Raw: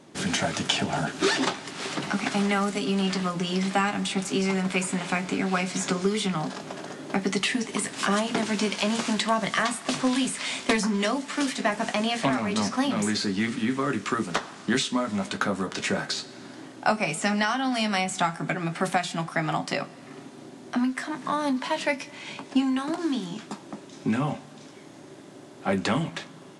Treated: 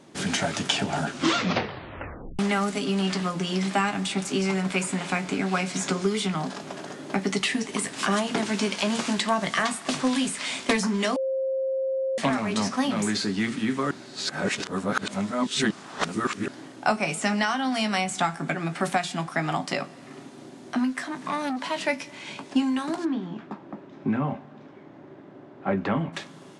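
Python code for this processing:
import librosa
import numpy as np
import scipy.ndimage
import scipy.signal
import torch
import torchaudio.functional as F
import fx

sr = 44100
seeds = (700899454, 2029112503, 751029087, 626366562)

y = fx.transformer_sat(x, sr, knee_hz=1200.0, at=(21.05, 21.84))
y = fx.lowpass(y, sr, hz=1800.0, slope=12, at=(23.04, 26.12), fade=0.02)
y = fx.edit(y, sr, fx.tape_stop(start_s=1.07, length_s=1.32),
    fx.bleep(start_s=11.16, length_s=1.02, hz=531.0, db=-23.5),
    fx.reverse_span(start_s=13.91, length_s=2.57), tone=tone)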